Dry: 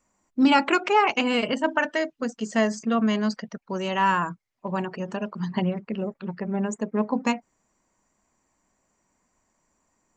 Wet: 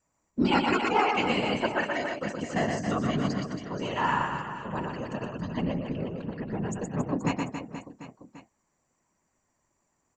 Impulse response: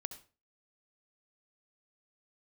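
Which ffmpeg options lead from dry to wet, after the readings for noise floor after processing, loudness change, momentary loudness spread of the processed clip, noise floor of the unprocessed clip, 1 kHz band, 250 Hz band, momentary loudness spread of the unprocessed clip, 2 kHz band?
-76 dBFS, -4.0 dB, 11 LU, -74 dBFS, -3.5 dB, -4.5 dB, 12 LU, -3.5 dB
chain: -af "afftfilt=real='hypot(re,im)*cos(2*PI*random(0))':imag='hypot(re,im)*sin(2*PI*random(1))':win_size=512:overlap=0.75,aecho=1:1:120|276|478.8|742.4|1085:0.631|0.398|0.251|0.158|0.1"

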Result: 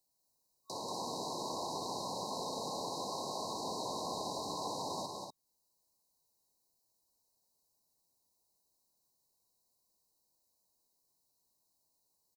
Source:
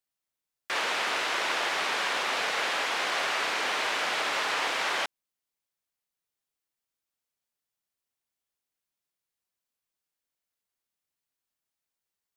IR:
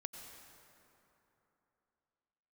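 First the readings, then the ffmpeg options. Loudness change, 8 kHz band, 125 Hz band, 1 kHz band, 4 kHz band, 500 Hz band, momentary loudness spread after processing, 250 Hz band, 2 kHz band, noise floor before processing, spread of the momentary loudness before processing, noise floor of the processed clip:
-12.0 dB, -6.5 dB, n/a, -8.5 dB, -12.5 dB, -5.5 dB, 3 LU, +0.5 dB, under -40 dB, under -85 dBFS, 2 LU, -79 dBFS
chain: -filter_complex "[0:a]acrossover=split=210[a][b];[b]acompressor=threshold=-52dB:ratio=2.5[c];[a][c]amix=inputs=2:normalize=0,aecho=1:1:186.6|244.9:0.631|0.501,afftfilt=real='re*(1-between(b*sr/4096,1100,3800))':imag='im*(1-between(b*sr/4096,1100,3800))':win_size=4096:overlap=0.75,volume=7.5dB"

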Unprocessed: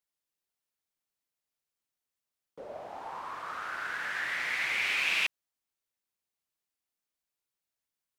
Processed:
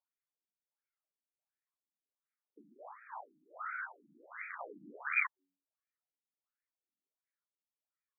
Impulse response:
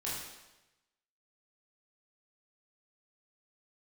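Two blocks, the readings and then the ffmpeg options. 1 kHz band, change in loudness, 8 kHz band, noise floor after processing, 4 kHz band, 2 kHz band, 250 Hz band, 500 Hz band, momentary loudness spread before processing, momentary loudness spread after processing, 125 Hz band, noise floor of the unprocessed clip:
-6.5 dB, -8.5 dB, under -30 dB, under -85 dBFS, under -40 dB, -8.5 dB, -4.5 dB, -9.0 dB, 16 LU, 21 LU, n/a, under -85 dBFS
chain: -af "aeval=exprs='0.158*(cos(1*acos(clip(val(0)/0.158,-1,1)))-cos(1*PI/2))+0.0398*(cos(7*acos(clip(val(0)/0.158,-1,1)))-cos(7*PI/2))':c=same,lowshelf=f=140:g=-12,aphaser=in_gain=1:out_gain=1:delay=1.8:decay=0.54:speed=0.43:type=triangular,bandreject=f=93.16:t=h:w=4,bandreject=f=186.32:t=h:w=4,bandreject=f=279.48:t=h:w=4,bandreject=f=372.64:t=h:w=4,afftfilt=real='re*between(b*sr/1024,230*pow(1800/230,0.5+0.5*sin(2*PI*1.4*pts/sr))/1.41,230*pow(1800/230,0.5+0.5*sin(2*PI*1.4*pts/sr))*1.41)':imag='im*between(b*sr/1024,230*pow(1800/230,0.5+0.5*sin(2*PI*1.4*pts/sr))/1.41,230*pow(1800/230,0.5+0.5*sin(2*PI*1.4*pts/sr))*1.41)':win_size=1024:overlap=0.75,volume=1dB"

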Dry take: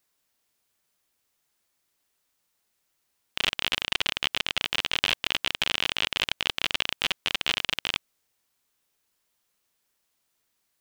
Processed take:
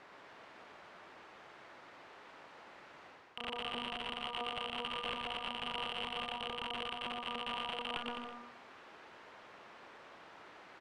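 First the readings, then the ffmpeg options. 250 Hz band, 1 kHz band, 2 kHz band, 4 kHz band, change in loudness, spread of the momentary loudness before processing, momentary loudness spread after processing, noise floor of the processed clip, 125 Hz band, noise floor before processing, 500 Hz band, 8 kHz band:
-3.5 dB, -2.5 dB, -14.0 dB, -14.0 dB, -13.0 dB, 3 LU, 16 LU, -57 dBFS, -11.0 dB, -76 dBFS, -3.0 dB, -23.0 dB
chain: -filter_complex "[0:a]bandreject=f=240.3:t=h:w=4,bandreject=f=480.6:t=h:w=4,bandreject=f=720.9:t=h:w=4,bandreject=f=961.2:t=h:w=4,bandreject=f=1.2015k:t=h:w=4,aeval=exprs='clip(val(0),-1,0.119)':c=same,areverse,acompressor=threshold=-41dB:ratio=10,areverse,asplit=2[a][b];[b]highpass=f=720:p=1,volume=31dB,asoftclip=type=tanh:threshold=-26dB[c];[a][c]amix=inputs=2:normalize=0,lowpass=f=1.2k:p=1,volume=-6dB,afftfilt=real='re*lt(hypot(re,im),0.0251)':imag='im*lt(hypot(re,im),0.0251)':win_size=1024:overlap=0.75,adynamicsmooth=sensitivity=6:basefreq=2.4k,asplit=2[d][e];[e]aecho=0:1:120|210|277.5|328.1|366.1:0.631|0.398|0.251|0.158|0.1[f];[d][f]amix=inputs=2:normalize=0,volume=9.5dB"

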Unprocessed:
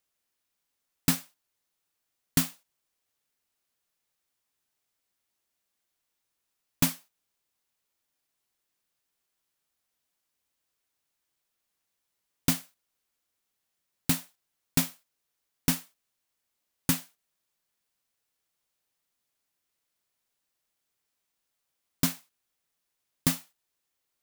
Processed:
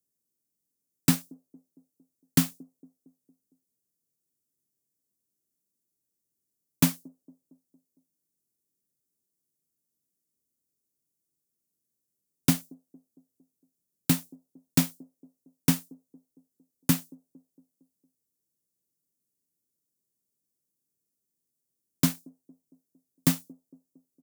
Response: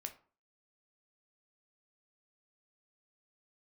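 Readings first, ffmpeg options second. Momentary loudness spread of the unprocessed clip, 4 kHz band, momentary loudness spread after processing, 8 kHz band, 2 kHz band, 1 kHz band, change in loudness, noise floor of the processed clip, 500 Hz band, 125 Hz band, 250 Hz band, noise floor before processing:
7 LU, -0.5 dB, 7 LU, 0.0 dB, -0.5 dB, +0.5 dB, +2.0 dB, -83 dBFS, +2.5 dB, +4.5 dB, +5.0 dB, -82 dBFS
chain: -filter_complex "[0:a]highpass=140,lowshelf=f=330:g=8.5,acrossover=split=290|450|5500[a][b][c][d];[b]aecho=1:1:229|458|687|916|1145:0.2|0.108|0.0582|0.0314|0.017[e];[c]aeval=exprs='sgn(val(0))*max(abs(val(0))-0.00168,0)':c=same[f];[a][e][f][d]amix=inputs=4:normalize=0"

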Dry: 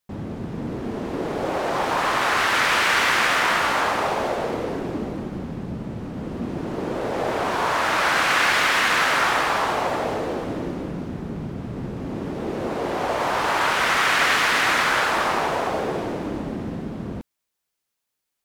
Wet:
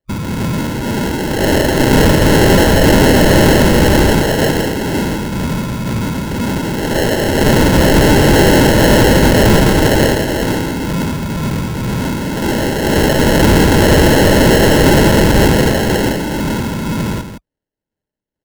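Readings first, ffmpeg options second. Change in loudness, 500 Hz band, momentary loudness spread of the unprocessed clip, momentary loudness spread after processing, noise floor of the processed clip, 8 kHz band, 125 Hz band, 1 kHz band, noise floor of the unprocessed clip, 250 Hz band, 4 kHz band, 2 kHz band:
+10.0 dB, +13.5 dB, 14 LU, 10 LU, -83 dBFS, +11.5 dB, +20.5 dB, +3.5 dB, -81 dBFS, +17.5 dB, +7.5 dB, +3.5 dB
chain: -filter_complex "[0:a]lowpass=3.4k,afwtdn=0.0398,equalizer=f=530:w=0.91:g=-7.5,acrossover=split=680[a][b];[a]asoftclip=type=tanh:threshold=-36.5dB[c];[c][b]amix=inputs=2:normalize=0,acrusher=samples=37:mix=1:aa=0.000001,aeval=exprs='0.299*(cos(1*acos(clip(val(0)/0.299,-1,1)))-cos(1*PI/2))+0.075*(cos(5*acos(clip(val(0)/0.299,-1,1)))-cos(5*PI/2))':c=same,tremolo=f=2:d=0.37,asuperstop=centerf=720:order=4:qfactor=7.7,asplit=2[d][e];[e]aecho=0:1:164:0.335[f];[d][f]amix=inputs=2:normalize=0,alimiter=level_in=16dB:limit=-1dB:release=50:level=0:latency=1,volume=-1dB"

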